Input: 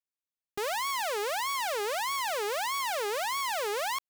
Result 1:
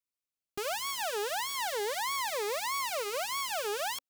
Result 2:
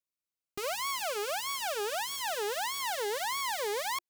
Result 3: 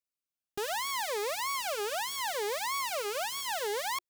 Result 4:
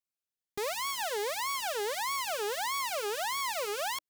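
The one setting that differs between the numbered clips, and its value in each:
Shepard-style phaser, rate: 0.36 Hz, 0.2 Hz, 0.71 Hz, 1.4 Hz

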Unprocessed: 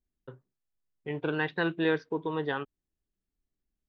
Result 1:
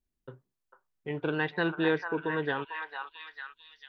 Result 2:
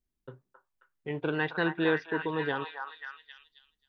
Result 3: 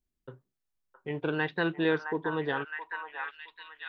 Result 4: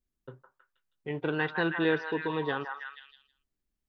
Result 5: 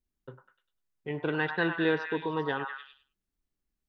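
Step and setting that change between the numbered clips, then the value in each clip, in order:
repeats whose band climbs or falls, time: 447 ms, 268 ms, 666 ms, 160 ms, 100 ms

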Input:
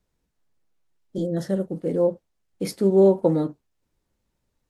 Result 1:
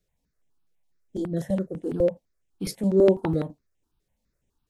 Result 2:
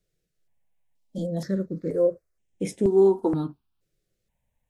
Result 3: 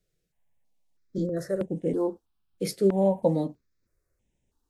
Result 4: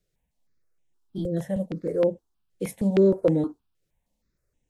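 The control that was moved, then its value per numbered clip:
stepped phaser, rate: 12 Hz, 2.1 Hz, 3.1 Hz, 6.4 Hz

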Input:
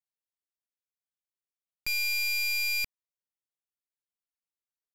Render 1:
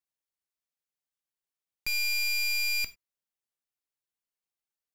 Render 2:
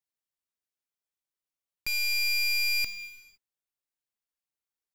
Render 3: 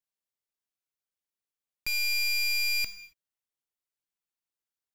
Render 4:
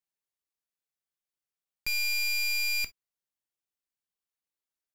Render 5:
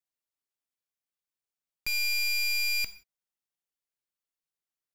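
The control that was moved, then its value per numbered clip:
gated-style reverb, gate: 120 ms, 540 ms, 300 ms, 80 ms, 200 ms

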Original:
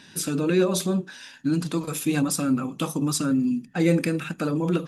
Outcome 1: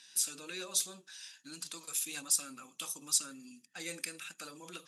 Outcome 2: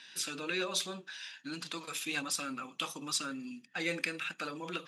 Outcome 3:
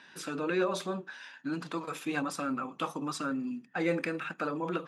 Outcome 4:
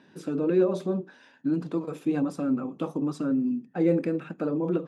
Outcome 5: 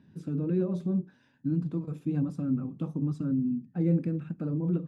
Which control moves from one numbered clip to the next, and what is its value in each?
band-pass filter, frequency: 7.9 kHz, 3 kHz, 1.2 kHz, 450 Hz, 110 Hz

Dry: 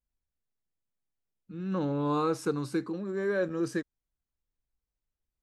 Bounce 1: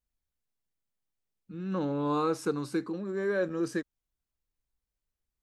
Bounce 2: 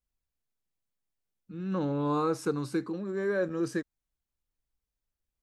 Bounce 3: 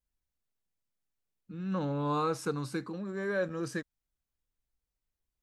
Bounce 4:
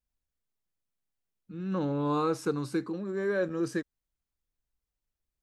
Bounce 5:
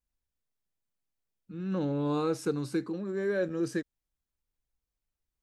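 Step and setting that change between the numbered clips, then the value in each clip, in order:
dynamic bell, frequency: 110 Hz, 3.1 kHz, 350 Hz, 9.3 kHz, 1.1 kHz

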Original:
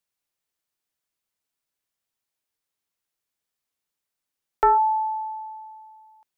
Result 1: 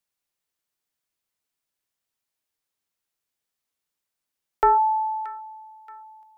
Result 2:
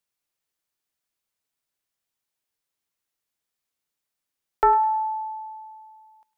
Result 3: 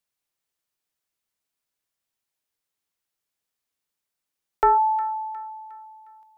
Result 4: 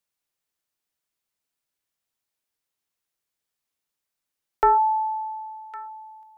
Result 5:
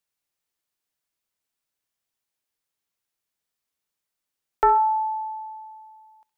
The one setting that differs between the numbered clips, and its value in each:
feedback echo behind a high-pass, time: 627 ms, 103 ms, 359 ms, 1108 ms, 65 ms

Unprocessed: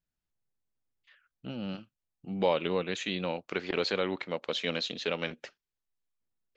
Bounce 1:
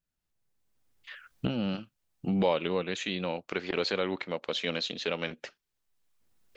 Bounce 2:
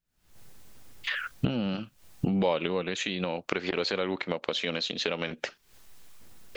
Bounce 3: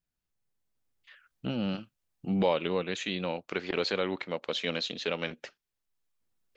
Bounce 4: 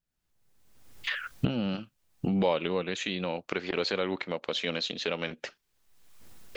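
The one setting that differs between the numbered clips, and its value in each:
recorder AGC, rising by: 14 dB/s, 91 dB/s, 5.6 dB/s, 35 dB/s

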